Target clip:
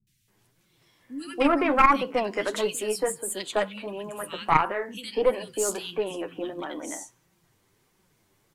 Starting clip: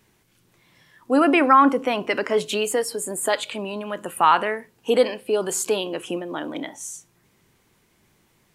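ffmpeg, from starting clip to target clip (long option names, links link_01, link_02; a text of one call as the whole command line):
ffmpeg -i in.wav -filter_complex "[0:a]acrossover=split=200|2400[link_01][link_02][link_03];[link_03]adelay=70[link_04];[link_02]adelay=280[link_05];[link_01][link_05][link_04]amix=inputs=3:normalize=0,flanger=delay=5.2:depth=5.2:regen=31:speed=1.5:shape=sinusoidal,aeval=exprs='0.501*(cos(1*acos(clip(val(0)/0.501,-1,1)))-cos(1*PI/2))+0.251*(cos(2*acos(clip(val(0)/0.501,-1,1)))-cos(2*PI/2))+0.00891*(cos(8*acos(clip(val(0)/0.501,-1,1)))-cos(8*PI/2))':channel_layout=same" out.wav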